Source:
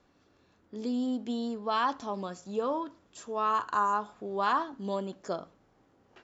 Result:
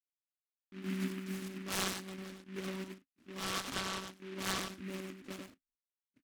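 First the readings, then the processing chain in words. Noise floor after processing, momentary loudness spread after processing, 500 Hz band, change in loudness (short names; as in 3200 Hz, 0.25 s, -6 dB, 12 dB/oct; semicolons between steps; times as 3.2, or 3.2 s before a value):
under -85 dBFS, 12 LU, -11.0 dB, -8.0 dB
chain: low-pass opened by the level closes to 690 Hz, open at -24.5 dBFS; ten-band EQ 125 Hz -8 dB, 500 Hz -11 dB, 1000 Hz +5 dB, 2000 Hz +6 dB; echo 0.1 s -5.5 dB; backlash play -49 dBFS; high shelf 2400 Hz -7.5 dB; monotone LPC vocoder at 8 kHz 190 Hz; vowel filter i; noise-modulated delay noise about 1900 Hz, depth 0.16 ms; gain +15 dB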